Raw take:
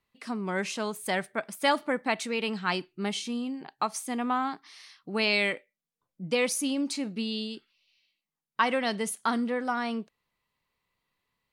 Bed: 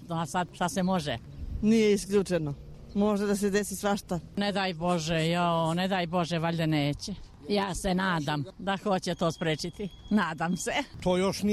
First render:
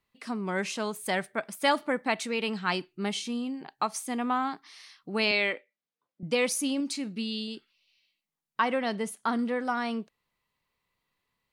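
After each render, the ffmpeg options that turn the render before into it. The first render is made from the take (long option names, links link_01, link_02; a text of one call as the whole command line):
ffmpeg -i in.wav -filter_complex "[0:a]asettb=1/sr,asplit=3[link_01][link_02][link_03];[link_01]atrim=end=5.314[link_04];[link_02]atrim=start=5.31:end=6.23,asetpts=PTS-STARTPTS,afade=type=in:duration=0.004:curve=qsin,afade=type=out:start_time=0.916:duration=0.004:curve=qsin,highpass=250,lowpass=4600[link_05];[link_03]atrim=start=6.226[link_06];[link_04][link_05]acrossfade=duration=0.004:curve1=hsin:curve2=qsin[link_07];[link_07][link_06]acrossfade=duration=0.004:curve1=qsin:curve2=hsin,asettb=1/sr,asplit=3[link_08][link_09][link_10];[link_08]atrim=end=6.804[link_11];[link_09]atrim=start=6.8:end=7.48,asetpts=PTS-STARTPTS,afade=type=in:duration=0.004:curve=qsin,afade=type=out:start_time=0.676:duration=0.004:curve=qsin,equalizer=frequency=690:width_type=o:width=1.6:gain=-6.5[link_12];[link_10]atrim=start=7.476[link_13];[link_11][link_12]acrossfade=duration=0.004:curve1=hsin:curve2=qsin[link_14];[link_14][link_13]acrossfade=duration=0.004:curve1=qsin:curve2=hsin,asettb=1/sr,asplit=3[link_15][link_16][link_17];[link_15]atrim=end=8.604[link_18];[link_16]atrim=start=8.6:end=9.39,asetpts=PTS-STARTPTS,afade=type=in:duration=0.004:curve=qsin,afade=type=out:start_time=0.786:duration=0.004:curve=qsin,highshelf=frequency=2300:gain=-7[link_19];[link_17]atrim=start=9.386[link_20];[link_18][link_19]acrossfade=duration=0.004:curve1=hsin:curve2=qsin[link_21];[link_21][link_20]acrossfade=duration=0.004:curve1=qsin:curve2=hsin" out.wav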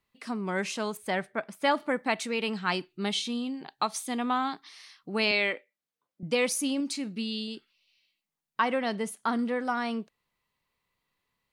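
ffmpeg -i in.wav -filter_complex "[0:a]asettb=1/sr,asplit=3[link_01][link_02][link_03];[link_01]atrim=end=0.974[link_04];[link_02]atrim=start=0.97:end=1.8,asetpts=PTS-STARTPTS,afade=type=in:duration=0.004:curve=qsin,afade=type=out:start_time=0.826:duration=0.004:curve=qsin,lowpass=frequency=2900:poles=1[link_05];[link_03]atrim=start=1.796[link_06];[link_04][link_05]acrossfade=duration=0.004:curve1=hsin:curve2=qsin[link_07];[link_07][link_06]acrossfade=duration=0.004:curve1=qsin:curve2=hsin,asettb=1/sr,asplit=3[link_08][link_09][link_10];[link_08]atrim=end=2.904[link_11];[link_09]atrim=start=2.9:end=4.69,asetpts=PTS-STARTPTS,afade=type=in:duration=0.004:curve=qsin,afade=type=out:start_time=1.786:duration=0.004:curve=qsin,equalizer=frequency=3700:width_type=o:width=0.45:gain=8.5[link_12];[link_10]atrim=start=4.686[link_13];[link_11][link_12]acrossfade=duration=0.004:curve1=hsin:curve2=qsin[link_14];[link_14][link_13]acrossfade=duration=0.004:curve1=qsin:curve2=hsin" out.wav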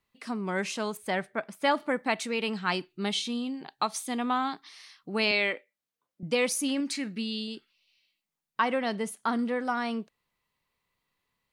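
ffmpeg -i in.wav -filter_complex "[0:a]asettb=1/sr,asplit=3[link_01][link_02][link_03];[link_01]atrim=end=6.684[link_04];[link_02]atrim=start=6.68:end=7.18,asetpts=PTS-STARTPTS,afade=type=in:duration=0.004:curve=qsin,afade=type=out:start_time=0.496:duration=0.004:curve=qsin,equalizer=frequency=1800:width_type=o:width=0.68:gain=11.5[link_05];[link_03]atrim=start=7.176[link_06];[link_04][link_05]acrossfade=duration=0.004:curve1=hsin:curve2=qsin[link_07];[link_07][link_06]acrossfade=duration=0.004:curve1=qsin:curve2=hsin" out.wav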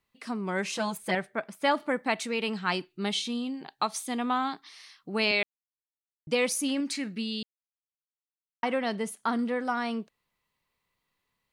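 ffmpeg -i in.wav -filter_complex "[0:a]asettb=1/sr,asplit=3[link_01][link_02][link_03];[link_01]atrim=end=0.724[link_04];[link_02]atrim=start=0.72:end=1.15,asetpts=PTS-STARTPTS,afade=type=in:duration=0.004:curve=qsin,afade=type=out:start_time=0.426:duration=0.004:curve=qsin,aecho=1:1:5.9:0.93,atrim=end_sample=18963[link_05];[link_03]atrim=start=1.146[link_06];[link_04][link_05]acrossfade=duration=0.004:curve1=hsin:curve2=qsin[link_07];[link_07][link_06]acrossfade=duration=0.004:curve1=qsin:curve2=hsin,asplit=5[link_08][link_09][link_10][link_11][link_12];[link_08]atrim=end=5.43,asetpts=PTS-STARTPTS,afade=type=out:start_time=5.426:duration=0.004:curve=hsin[link_13];[link_09]atrim=start=5.43:end=6.27,asetpts=PTS-STARTPTS,volume=0[link_14];[link_10]atrim=start=6.27:end=7.43,asetpts=PTS-STARTPTS,afade=type=in:duration=0.004:curve=hsin,afade=type=out:start_time=1.156:duration=0.004:curve=hsin[link_15];[link_11]atrim=start=7.43:end=8.63,asetpts=PTS-STARTPTS,volume=0[link_16];[link_12]atrim=start=8.63,asetpts=PTS-STARTPTS,afade=type=in:duration=0.004:curve=hsin[link_17];[link_13][link_14][link_15][link_16][link_17]concat=n=5:v=0:a=1" out.wav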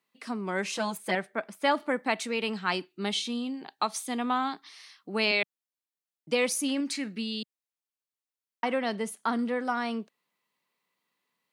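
ffmpeg -i in.wav -af "highpass=frequency=180:width=0.5412,highpass=frequency=180:width=1.3066" out.wav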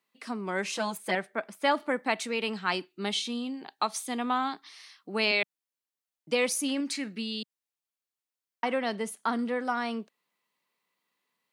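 ffmpeg -i in.wav -af "lowshelf=frequency=100:gain=-9" out.wav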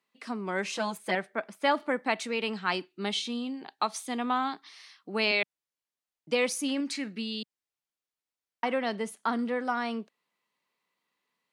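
ffmpeg -i in.wav -af "highshelf=frequency=10000:gain=-9.5" out.wav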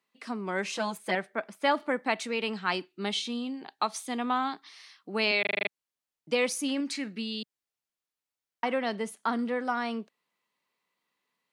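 ffmpeg -i in.wav -filter_complex "[0:a]asplit=8[link_01][link_02][link_03][link_04][link_05][link_06][link_07][link_08];[link_01]atrim=end=5.452[link_09];[link_02]atrim=start=5.408:end=5.452[link_10];[link_03]atrim=start=5.408:end=5.452[link_11];[link_04]atrim=start=5.408:end=5.452[link_12];[link_05]atrim=start=5.408:end=5.452[link_13];[link_06]atrim=start=5.408:end=5.452[link_14];[link_07]atrim=start=5.408:end=5.452[link_15];[link_08]atrim=start=5.688[link_16];[link_09][link_10]acrossfade=duration=0.004:curve1=hsin:curve2=hsin[link_17];[link_17][link_11]acrossfade=duration=0.004:curve1=hsin:curve2=hsin[link_18];[link_18][link_12]acrossfade=duration=0.004:curve1=hsin:curve2=hsin[link_19];[link_19][link_13]acrossfade=duration=0.004:curve1=hsin:curve2=hsin[link_20];[link_20][link_14]acrossfade=duration=0.004:curve1=hsin:curve2=hsin[link_21];[link_21][link_15]acrossfade=duration=0.004:curve1=hsin:curve2=hsin[link_22];[link_22][link_16]acrossfade=duration=0.004:curve1=hsin:curve2=hsin" out.wav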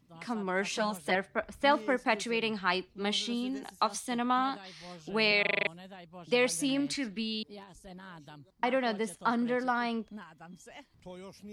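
ffmpeg -i in.wav -i bed.wav -filter_complex "[1:a]volume=-20.5dB[link_01];[0:a][link_01]amix=inputs=2:normalize=0" out.wav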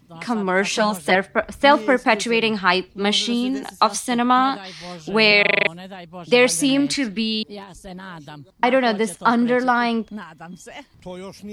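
ffmpeg -i in.wav -af "volume=12dB,alimiter=limit=-1dB:level=0:latency=1" out.wav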